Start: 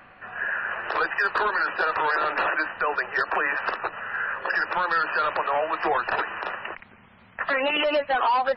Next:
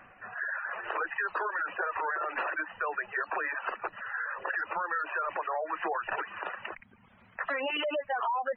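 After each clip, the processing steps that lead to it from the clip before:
gate on every frequency bin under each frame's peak −20 dB strong
reverb reduction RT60 0.66 s
downward compressor 2 to 1, threshold −27 dBFS, peak gain reduction 4.5 dB
level −4 dB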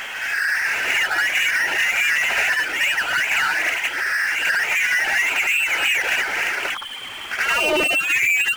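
voice inversion scrambler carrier 3,300 Hz
power curve on the samples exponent 0.5
backwards echo 74 ms −4.5 dB
level +6.5 dB

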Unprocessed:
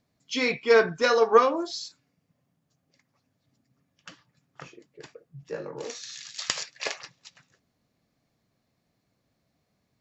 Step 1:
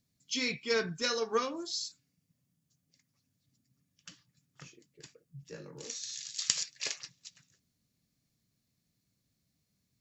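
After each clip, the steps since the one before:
drawn EQ curve 180 Hz 0 dB, 730 Hz −14 dB, 7,800 Hz +7 dB
level −3.5 dB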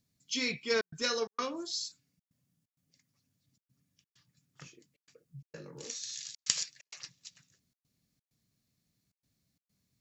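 gate pattern "xxxxxxx.xxx." 130 BPM −60 dB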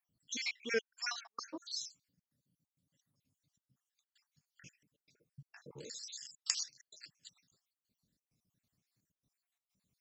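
time-frequency cells dropped at random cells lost 62%
level −1.5 dB

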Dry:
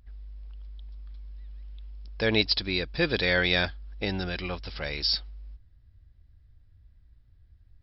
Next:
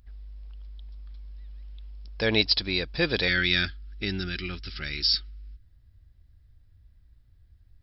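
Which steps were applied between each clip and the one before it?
gain on a spectral selection 0:03.28–0:05.63, 430–1,200 Hz −15 dB
high-shelf EQ 4,900 Hz +5.5 dB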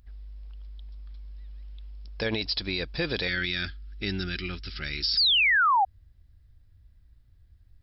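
sound drawn into the spectrogram fall, 0:05.17–0:05.85, 740–5,100 Hz −13 dBFS
brickwall limiter −18 dBFS, peak gain reduction 11 dB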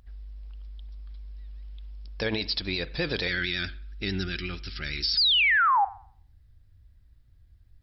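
on a send at −15.5 dB: convolution reverb, pre-delay 42 ms
on the sum: pitch vibrato 11 Hz 47 cents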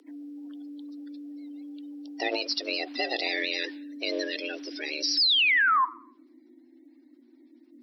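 spectral magnitudes quantised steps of 30 dB
frequency shifter +240 Hz

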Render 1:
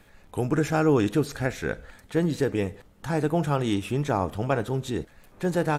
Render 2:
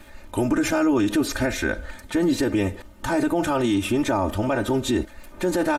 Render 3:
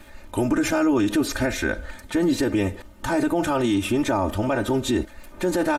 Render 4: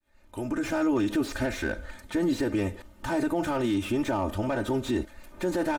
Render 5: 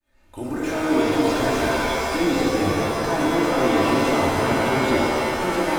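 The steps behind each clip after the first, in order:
comb filter 3.3 ms, depth 98%; brickwall limiter −20 dBFS, peak gain reduction 10 dB; level +6.5 dB
no processing that can be heard
fade in at the beginning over 0.80 s; slew-rate limiting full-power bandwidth 110 Hz; level −5 dB
echo through a band-pass that steps 458 ms, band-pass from 600 Hz, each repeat 0.7 octaves, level −3 dB; reverb with rising layers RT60 2.4 s, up +7 semitones, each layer −2 dB, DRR −3.5 dB

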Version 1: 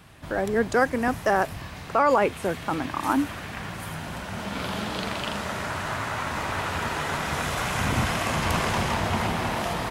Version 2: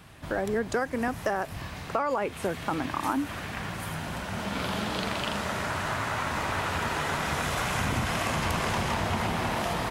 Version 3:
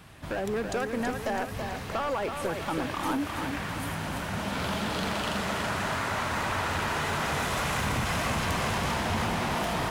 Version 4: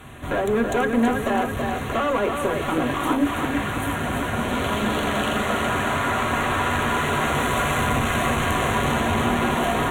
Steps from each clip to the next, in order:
downward compressor 6 to 1, threshold −24 dBFS, peak gain reduction 9 dB
hard clipping −25.5 dBFS, distortion −12 dB; feedback echo at a low word length 328 ms, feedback 55%, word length 10 bits, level −6 dB
asymmetric clip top −35 dBFS; Butterworth band-reject 5,000 Hz, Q 2.1; on a send at −1.5 dB: convolution reverb RT60 0.20 s, pre-delay 3 ms; on the sum: level +7 dB

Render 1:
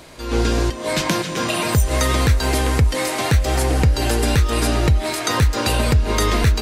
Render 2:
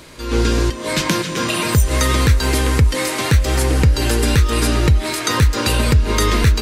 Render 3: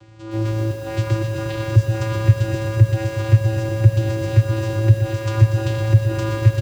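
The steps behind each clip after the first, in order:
parametric band 710 Hz −8.5 dB 0.46 octaves; level +2.5 dB
channel vocoder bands 8, square 110 Hz; single-tap delay 389 ms −17.5 dB; feedback echo at a low word length 120 ms, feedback 80%, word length 7 bits, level −8 dB; level +1.5 dB

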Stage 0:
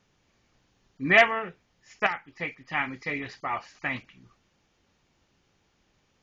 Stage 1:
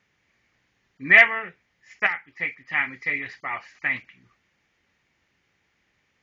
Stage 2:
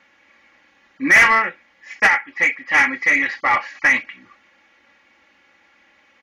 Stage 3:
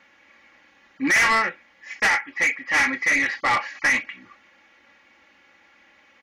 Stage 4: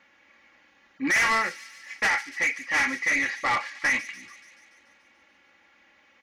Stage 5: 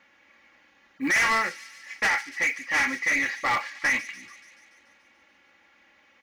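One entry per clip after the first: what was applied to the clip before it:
high-pass filter 48 Hz; parametric band 2,000 Hz +13 dB 0.78 octaves; level −4.5 dB
comb filter 3.6 ms, depth 77%; mid-hump overdrive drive 23 dB, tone 1,600 Hz, clips at −1 dBFS
soft clipping −15.5 dBFS, distortion −10 dB
delay with a high-pass on its return 144 ms, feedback 64%, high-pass 3,400 Hz, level −10 dB; level −4 dB
noise that follows the level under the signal 34 dB

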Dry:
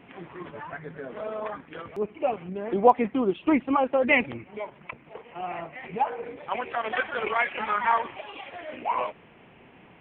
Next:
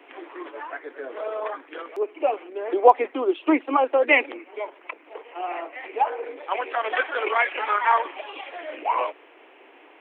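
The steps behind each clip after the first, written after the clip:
Butterworth high-pass 290 Hz 72 dB per octave
level +3.5 dB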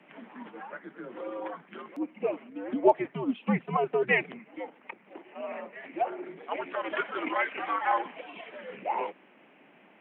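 frequency shifter −110 Hz
level −7 dB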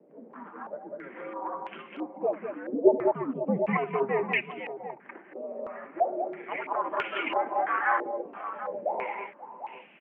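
on a send: multi-tap delay 71/197/202/531/743 ms −14.5/−5/−9/−19.5/−12.5 dB
on the sum: low-pass on a step sequencer 3 Hz 480–2,700 Hz
level −4 dB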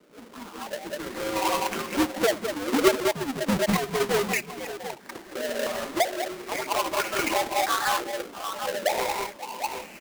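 each half-wave held at its own peak
camcorder AGC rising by 6.8 dB per second
level −3.5 dB

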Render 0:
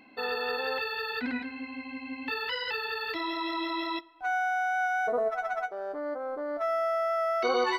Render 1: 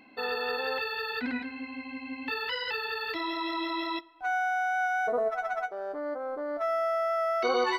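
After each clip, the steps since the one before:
no processing that can be heard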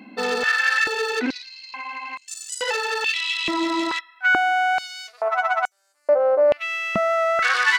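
phase distortion by the signal itself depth 0.14 ms
high-pass on a step sequencer 2.3 Hz 200–7,800 Hz
level +7.5 dB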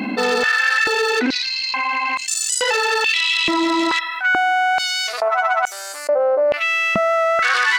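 envelope flattener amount 70%
level −1.5 dB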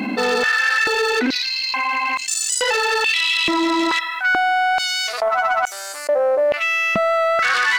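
leveller curve on the samples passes 1
level −3.5 dB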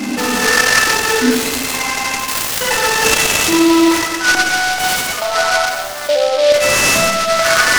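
convolution reverb RT60 1.4 s, pre-delay 3 ms, DRR −3.5 dB
short delay modulated by noise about 3,400 Hz, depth 0.064 ms
level −1 dB

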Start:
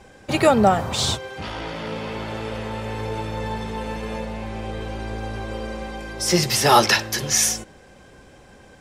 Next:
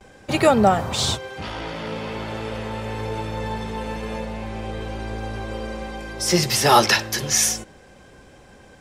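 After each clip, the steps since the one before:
noise gate with hold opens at −39 dBFS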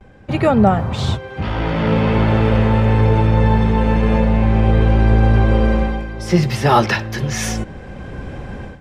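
bass and treble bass +9 dB, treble −15 dB
automatic gain control gain up to 15.5 dB
level −1 dB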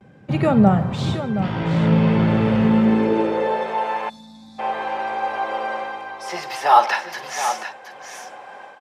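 multi-tap delay 49/150/723 ms −13.5/−18/−10 dB
high-pass filter sweep 150 Hz → 790 Hz, 0:02.61–0:03.89
gain on a spectral selection 0:04.09–0:04.59, 310–3,400 Hz −30 dB
level −5 dB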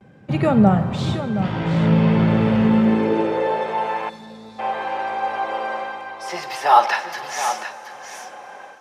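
dense smooth reverb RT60 5 s, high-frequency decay 0.9×, DRR 16 dB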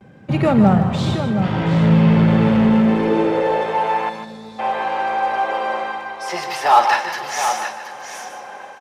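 in parallel at −4 dB: hard clipping −19 dBFS, distortion −7 dB
on the sum: single-tap delay 151 ms −9.5 dB
level −1 dB

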